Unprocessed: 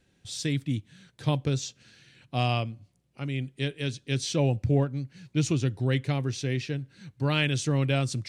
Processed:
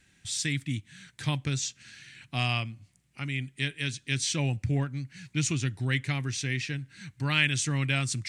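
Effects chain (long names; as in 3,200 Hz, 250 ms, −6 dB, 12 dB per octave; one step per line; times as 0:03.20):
octave-band graphic EQ 500/2,000/8,000 Hz −10/+9/+9 dB
in parallel at −2 dB: downward compressor, threshold −39 dBFS, peak gain reduction 21.5 dB
on the sum: level −3.5 dB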